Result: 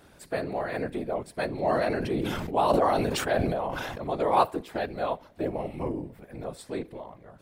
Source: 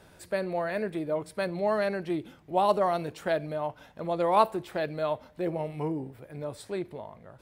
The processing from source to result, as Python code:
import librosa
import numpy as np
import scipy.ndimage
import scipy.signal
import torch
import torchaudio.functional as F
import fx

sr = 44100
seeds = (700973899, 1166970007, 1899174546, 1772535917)

y = fx.whisperise(x, sr, seeds[0])
y = fx.sustainer(y, sr, db_per_s=23.0, at=(1.63, 4.04))